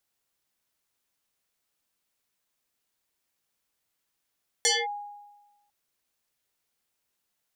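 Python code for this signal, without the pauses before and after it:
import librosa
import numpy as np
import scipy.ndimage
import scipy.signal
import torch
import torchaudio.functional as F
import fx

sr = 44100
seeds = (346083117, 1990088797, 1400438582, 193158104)

y = fx.fm2(sr, length_s=1.05, level_db=-18, carrier_hz=822.0, ratio=1.57, index=6.3, index_s=0.22, decay_s=1.19, shape='linear')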